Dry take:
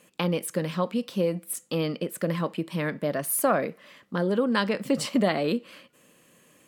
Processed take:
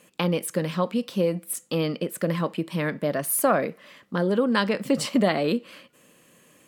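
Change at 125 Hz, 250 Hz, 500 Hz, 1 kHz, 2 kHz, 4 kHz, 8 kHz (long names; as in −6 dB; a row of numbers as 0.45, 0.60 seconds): +2.0, +2.0, +2.0, +2.0, +2.0, +2.0, +2.0 decibels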